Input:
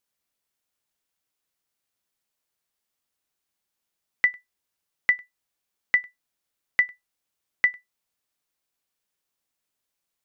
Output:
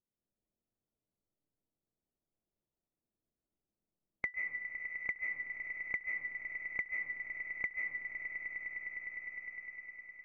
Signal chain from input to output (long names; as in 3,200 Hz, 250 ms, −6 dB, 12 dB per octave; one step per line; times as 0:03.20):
loose part that buzzes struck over −56 dBFS, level −28 dBFS
linear-phase brick-wall low-pass 2,100 Hz
low-pass that shuts in the quiet parts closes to 360 Hz, open at −22 dBFS
echo that builds up and dies away 102 ms, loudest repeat 5, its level −17 dB
comb and all-pass reverb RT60 0.92 s, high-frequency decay 0.4×, pre-delay 110 ms, DRR −2 dB
downward compressor 3 to 1, threshold −42 dBFS, peak gain reduction 18.5 dB
level +1 dB